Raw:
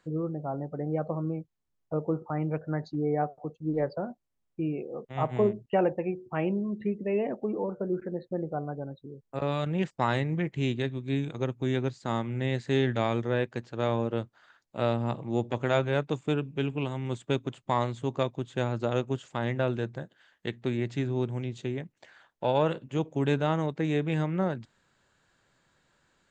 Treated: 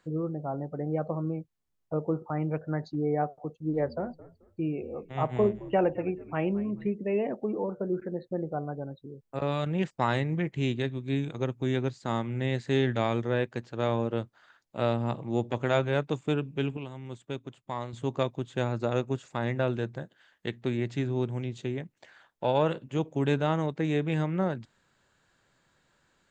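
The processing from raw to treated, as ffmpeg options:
-filter_complex "[0:a]asettb=1/sr,asplit=3[a][b][c];[a]atrim=end=3.554[d];[b]atrim=start=3.55:end=6.89,asetpts=PTS-STARTPTS,afade=t=in:d=0.004:c=qsin,afade=t=out:st=3.336:d=0.004:c=qsin,asplit=4[e][f][g][h];[f]adelay=217,afreqshift=-73,volume=-18.5dB[i];[g]adelay=434,afreqshift=-146,volume=-29dB[j];[h]adelay=651,afreqshift=-219,volume=-39.4dB[k];[e][i][j][k]amix=inputs=4:normalize=0,atrim=end_sample=147294[l];[c]atrim=start=6.886[m];[d][l]acrossfade=d=0.004:c1=hsin:c2=qsin[n];[n][m]acrossfade=d=0.004:c1=qsin:c2=hsin,asettb=1/sr,asplit=3[o][p][q];[o]atrim=end=18.654[r];[p]atrim=start=18.65:end=19.62,asetpts=PTS-STARTPTS,afade=t=in:d=0.004:c=qsin,afade=t=out:st=0.966:d=0.004:c=qsin,bandreject=f=3.1k:w=8.2[s];[q]atrim=start=19.616[t];[r][s]acrossfade=d=0.004:c1=hsin:c2=qsin[u];[u][t]acrossfade=d=0.004:c1=qsin:c2=hsin,asplit=3[v][w][x];[v]atrim=end=16.772[y];[w]atrim=start=16.768:end=17.932,asetpts=PTS-STARTPTS,volume=-8dB[z];[x]atrim=start=17.928[aa];[y][z]acrossfade=d=0.004:c1=hsin:c2=hsin[ab];[ab][aa]acrossfade=d=0.004:c1=hsin:c2=hsin"

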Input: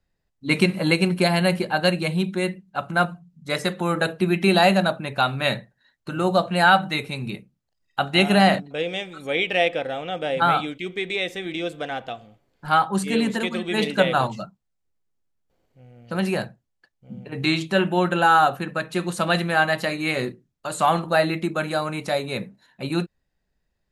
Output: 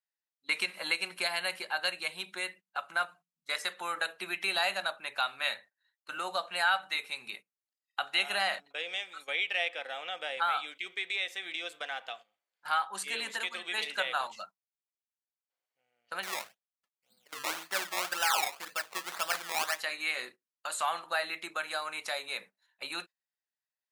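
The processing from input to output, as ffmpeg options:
-filter_complex "[0:a]asettb=1/sr,asplit=3[a][b][c];[a]atrim=end=16.234[d];[b]atrim=start=16.23:end=19.79,asetpts=PTS-STARTPTS,afade=t=in:d=0.004:c=qsin,afade=t=out:st=3.556:d=0.004:c=qsin,acrusher=samples=20:mix=1:aa=0.000001:lfo=1:lforange=20:lforate=1.9[e];[c]atrim=start=19.786[f];[d][e]acrossfade=d=0.004:c1=hsin:c2=qsin[g];[g][f]acrossfade=d=0.004:c1=qsin:c2=hsin,highpass=1.1k,agate=range=-14dB:threshold=-45dB:ratio=16:detection=peak,acompressor=threshold=-39dB:ratio=1.5"

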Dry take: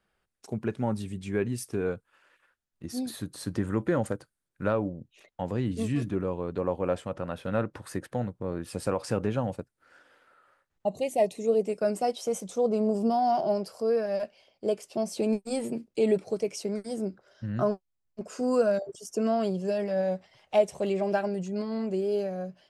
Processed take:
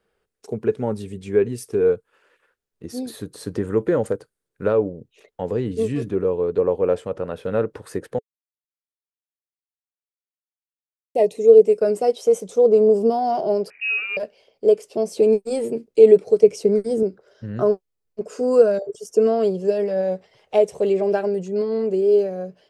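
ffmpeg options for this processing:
-filter_complex "[0:a]asettb=1/sr,asplit=3[a][b][c];[a]atrim=end=13.704[d];[b]atrim=start=13.7:end=14.17,asetpts=PTS-STARTPTS,afade=t=in:d=0.004:c=qsin,afade=t=out:st=0.466:d=0.004:c=qsin,lowpass=f=2.6k:t=q:w=0.5098,lowpass=f=2.6k:t=q:w=0.6013,lowpass=f=2.6k:t=q:w=0.9,lowpass=f=2.6k:t=q:w=2.563,afreqshift=-3000[e];[c]atrim=start=14.166[f];[d][e]acrossfade=d=0.004:c1=hsin:c2=qsin[g];[g][f]acrossfade=d=0.004:c1=qsin:c2=hsin,asettb=1/sr,asplit=3[h][i][j];[h]atrim=end=16.434[k];[i]atrim=start=16.43:end=17.03,asetpts=PTS-STARTPTS,afade=t=in:d=0.004:c=qsin,afade=t=out:st=0.596:d=0.004:c=qsin,lowshelf=f=260:g=11.5[l];[j]atrim=start=17.026[m];[k][l]acrossfade=d=0.004:c1=hsin:c2=qsin[n];[n][m]acrossfade=d=0.004:c1=qsin:c2=hsin,asplit=3[o][p][q];[o]atrim=end=8.19,asetpts=PTS-STARTPTS,afade=t=out:st=8.186:d=0.004:c=hsin[r];[p]atrim=start=8.19:end=11.15,asetpts=PTS-STARTPTS,volume=0[s];[q]atrim=start=11.15,asetpts=PTS-STARTPTS,afade=t=in:d=0.004:c=hsin[t];[r][s][t]concat=n=3:v=0:a=1,equalizer=f=440:w=3.2:g=14,volume=1.5dB"

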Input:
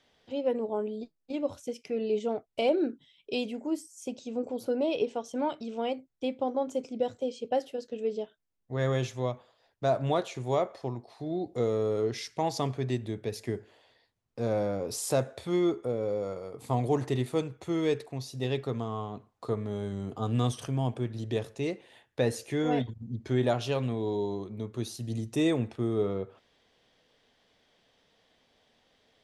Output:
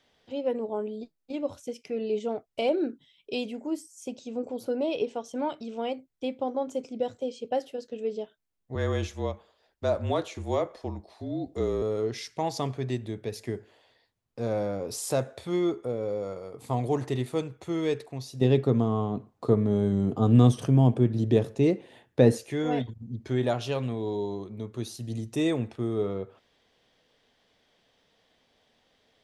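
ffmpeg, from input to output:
-filter_complex "[0:a]asettb=1/sr,asplit=3[a][b][c];[a]atrim=end=8.754[d];[b]atrim=start=8.75:end=11.82,asetpts=PTS-STARTPTS,afade=t=in:d=0.004:c=qsin,afade=t=out:st=3.066:d=0.004:c=qsin,afreqshift=-38[e];[c]atrim=start=11.816[f];[d][e]acrossfade=d=0.004:c1=hsin:c2=qsin[g];[g][f]acrossfade=d=0.004:c1=qsin:c2=hsin,asettb=1/sr,asplit=3[h][i][j];[h]atrim=end=18.414[k];[i]atrim=start=18.41:end=22.38,asetpts=PTS-STARTPTS,afade=t=in:d=0.004:c=qsin,afade=t=out:st=3.966:d=0.004:c=qsin,equalizer=f=210:w=0.38:g=11.5[l];[j]atrim=start=22.376[m];[k][l]acrossfade=d=0.004:c1=hsin:c2=qsin[n];[n][m]acrossfade=d=0.004:c1=qsin:c2=hsin"

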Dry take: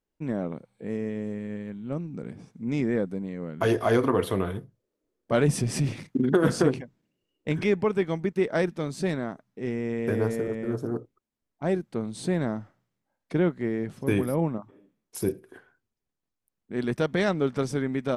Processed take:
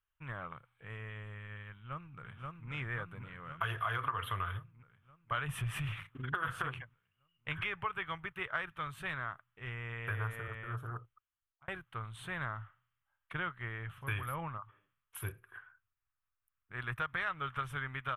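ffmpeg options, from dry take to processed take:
-filter_complex "[0:a]asplit=2[a][b];[b]afade=t=in:st=1.71:d=0.01,afade=t=out:st=2.7:d=0.01,aecho=0:1:530|1060|1590|2120|2650|3180|3710|4240|4770|5300|5830:0.794328|0.516313|0.335604|0.218142|0.141793|0.0921652|0.0599074|0.0389398|0.0253109|0.0164521|0.0106938[c];[a][c]amix=inputs=2:normalize=0,asettb=1/sr,asplit=3[d][e][f];[d]atrim=end=15.294[g];[e]atrim=start=15.29:end=17.27,asetpts=PTS-STARTPTS,afade=t=in:d=0.004:c=qsin,afade=t=out:st=1.976:d=0.004:c=qsin,equalizer=f=3.1k:t=o:w=0.28:g=-7.5[h];[f]atrim=start=17.266[i];[g][h]acrossfade=d=0.004:c1=hsin:c2=qsin[j];[j][i]acrossfade=d=0.004:c1=qsin:c2=hsin,asplit=2[k][l];[k]atrim=end=11.68,asetpts=PTS-STARTPTS,afade=t=out:st=10.93:d=0.75:c=qsin[m];[l]atrim=start=11.68,asetpts=PTS-STARTPTS,afade=t=in:d=0.004:c=hsin[n];[m][n]concat=n=2:v=0:a=1,firequalizer=gain_entry='entry(110,0);entry(210,-26);entry(780,-8);entry(1200,9);entry(2100,1);entry(3100,6);entry(4700,-24);entry(12000,-1)':delay=0.05:min_phase=1,acompressor=threshold=-30dB:ratio=4,volume=-2.5dB"

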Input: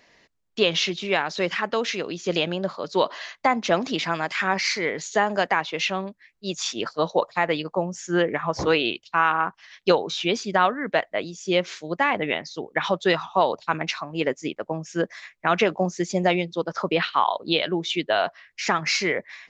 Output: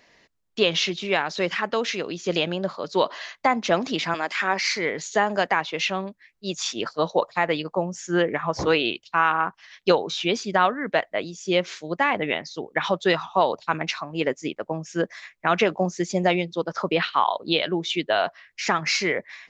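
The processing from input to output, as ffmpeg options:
-filter_complex "[0:a]asettb=1/sr,asplit=3[a][b][c];[a]atrim=end=4.144[d];[b]atrim=start=4.14:end=4.68,asetpts=PTS-STARTPTS,afade=t=in:d=0.004:c=qsin,afade=t=out:st=0.536:d=0.004:c=qsin,highpass=f=220:w=0.5412,highpass=f=220:w=1.3066[e];[c]atrim=start=4.676[f];[d][e]acrossfade=d=0.004:c1=hsin:c2=qsin[g];[g][f]acrossfade=d=0.004:c1=qsin:c2=hsin"

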